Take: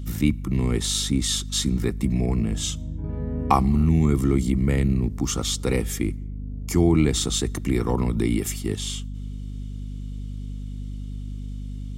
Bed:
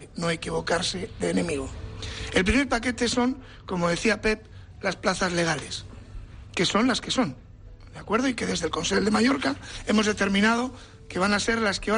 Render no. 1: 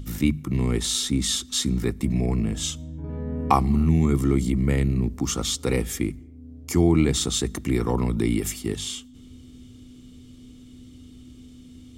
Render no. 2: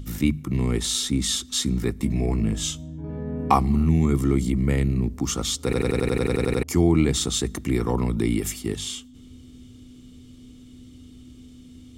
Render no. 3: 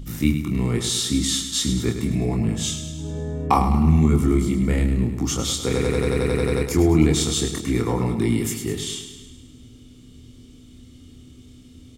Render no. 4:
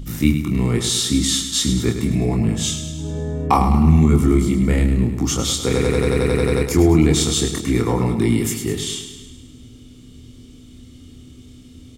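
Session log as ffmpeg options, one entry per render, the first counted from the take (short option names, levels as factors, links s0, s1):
-af "bandreject=f=50:t=h:w=6,bandreject=f=100:t=h:w=6,bandreject=f=150:t=h:w=6,bandreject=f=200:t=h:w=6"
-filter_complex "[0:a]asettb=1/sr,asplit=3[s0][s1][s2];[s0]atrim=end=1.974[s3];[s1]atrim=start=1.97:end=3.58,asetpts=PTS-STARTPTS,afade=t=in:d=0.004:c=qsin,afade=t=out:st=1.606:d=0.004:c=qsin,asplit=2[s4][s5];[s5]adelay=19,volume=0.398[s6];[s4][s6]amix=inputs=2:normalize=0,atrim=end_sample=71001[s7];[s2]atrim=start=3.576[s8];[s3][s7]acrossfade=d=0.004:c1=hsin:c2=qsin[s9];[s9][s8]acrossfade=d=0.004:c1=qsin:c2=hsin,asplit=12[s10][s11][s12][s13][s14][s15][s16][s17][s18][s19][s20][s21];[s10]atrim=end=5.732[s22];[s11]atrim=start=5.638:end=5.732[s23];[s12]atrim=start=5.638:end=5.732[s24];[s13]atrim=start=5.638:end=5.732[s25];[s14]atrim=start=5.638:end=5.732[s26];[s15]atrim=start=5.638:end=5.732[s27];[s16]atrim=start=5.638:end=5.732[s28];[s17]atrim=start=5.638:end=5.732[s29];[s18]atrim=start=5.638:end=5.732[s30];[s19]atrim=start=5.638:end=5.732[s31];[s20]atrim=start=5.638:end=5.732[s32];[s21]atrim=start=6.628[s33];[s22][s23]acrossfade=d=0.004:c1=hsin:c2=hsin[s34];[s34][s24]acrossfade=d=0.004:c1=hsin:c2=hsin[s35];[s35][s25]acrossfade=d=0.004:c1=hsin:c2=hsin[s36];[s36][s26]acrossfade=d=0.004:c1=hsin:c2=hsin[s37];[s37][s27]acrossfade=d=0.004:c1=hsin:c2=hsin[s38];[s38][s28]acrossfade=d=0.004:c1=hsin:c2=hsin[s39];[s39][s29]acrossfade=d=0.004:c1=hsin:c2=hsin[s40];[s40][s30]acrossfade=d=0.004:c1=hsin:c2=hsin[s41];[s41][s31]acrossfade=d=0.004:c1=hsin:c2=hsin[s42];[s42][s32]acrossfade=d=0.004:c1=hsin:c2=hsin[s43];[s43][s33]acrossfade=d=0.004:c1=hsin:c2=hsin"
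-filter_complex "[0:a]asplit=2[s0][s1];[s1]adelay=26,volume=0.596[s2];[s0][s2]amix=inputs=2:normalize=0,asplit=2[s3][s4];[s4]aecho=0:1:104|208|312|416|520|624|728:0.355|0.206|0.119|0.0692|0.0402|0.0233|0.0135[s5];[s3][s5]amix=inputs=2:normalize=0"
-af "volume=1.5,alimiter=limit=0.708:level=0:latency=1"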